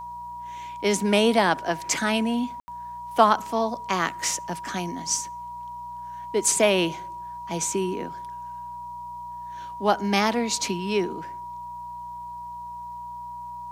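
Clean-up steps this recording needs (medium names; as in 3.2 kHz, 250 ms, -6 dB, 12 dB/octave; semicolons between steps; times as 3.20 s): de-hum 60.4 Hz, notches 3; band-stop 960 Hz, Q 30; room tone fill 2.60–2.68 s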